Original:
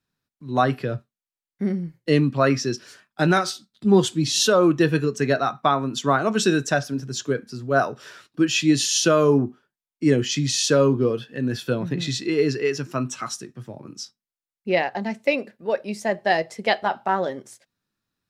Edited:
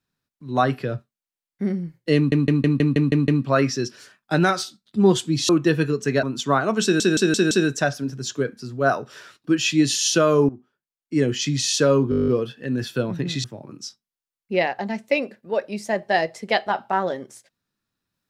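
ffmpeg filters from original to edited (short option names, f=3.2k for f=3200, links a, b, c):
-filter_complex "[0:a]asplit=25[a][b][c][d][e][f][g][h][i][j][k][l][m][n][o][p][q][r][s][t][u][v][w][x][y];[a]atrim=end=2.322[z];[b]atrim=start=2.158:end=2.322[aa];[c]atrim=start=2.158:end=2.322[ab];[d]atrim=start=2.158:end=2.322[ac];[e]atrim=start=2.158:end=2.322[ad];[f]atrim=start=2.158:end=2.322[ae];[g]atrim=start=2.158:end=2.322[af];[h]atrim=start=2.158:end=4.372[ag];[i]atrim=start=4.628:end=5.372[ah];[j]atrim=start=5.808:end=6.582[ai];[k]atrim=start=6.408:end=6.582[aj];[l]atrim=start=6.408:end=6.582[ak];[m]atrim=start=6.408:end=6.582[al];[n]atrim=start=6.408:end=9.39,asetpts=PTS-STARTPTS,afade=t=out:st=2.978:d=0.004:c=hsin:silence=0.149624[am];[o]atrim=start=9.39:end=11.022,asetpts=PTS-STARTPTS,afade=t=in:d=0.93:silence=0.149624[an];[p]atrim=start=10.998:end=11.022[ao];[q]atrim=start=10.998:end=11.022[ap];[r]atrim=start=10.998:end=11.022[aq];[s]atrim=start=10.998:end=11.022[ar];[t]atrim=start=10.998:end=11.022[as];[u]atrim=start=10.998:end=11.022[at];[v]atrim=start=10.998:end=11.022[au];[w]atrim=start=10.998:end=11.022[av];[x]atrim=start=10.998:end=12.162[aw];[y]atrim=start=13.598[ax];[z][aa]acrossfade=d=0.004:c1=hsin:c2=hsin[ay];[ay][ab]acrossfade=d=0.004:c1=hsin:c2=hsin[az];[az][ac]acrossfade=d=0.004:c1=hsin:c2=hsin[ba];[ba][ad]acrossfade=d=0.004:c1=hsin:c2=hsin[bb];[bb][ae]acrossfade=d=0.004:c1=hsin:c2=hsin[bc];[bc][af]acrossfade=d=0.004:c1=hsin:c2=hsin[bd];[bd][ag]acrossfade=d=0.004:c1=hsin:c2=hsin[be];[be][ah]acrossfade=d=0.004:c1=hsin:c2=hsin[bf];[bf][ai]acrossfade=d=0.004:c1=hsin:c2=hsin[bg];[bg][aj]acrossfade=d=0.004:c1=hsin:c2=hsin[bh];[bh][ak]acrossfade=d=0.004:c1=hsin:c2=hsin[bi];[bi][al]acrossfade=d=0.004:c1=hsin:c2=hsin[bj];[am][an]concat=n=2:v=0:a=1[bk];[bj][bk]acrossfade=d=0.004:c1=hsin:c2=hsin[bl];[bl][ao]acrossfade=d=0.004:c1=hsin:c2=hsin[bm];[bm][ap]acrossfade=d=0.004:c1=hsin:c2=hsin[bn];[bn][aq]acrossfade=d=0.004:c1=hsin:c2=hsin[bo];[bo][ar]acrossfade=d=0.004:c1=hsin:c2=hsin[bp];[bp][as]acrossfade=d=0.004:c1=hsin:c2=hsin[bq];[bq][at]acrossfade=d=0.004:c1=hsin:c2=hsin[br];[br][au]acrossfade=d=0.004:c1=hsin:c2=hsin[bs];[bs][av]acrossfade=d=0.004:c1=hsin:c2=hsin[bt];[bt][aw]acrossfade=d=0.004:c1=hsin:c2=hsin[bu];[bu][ax]acrossfade=d=0.004:c1=hsin:c2=hsin"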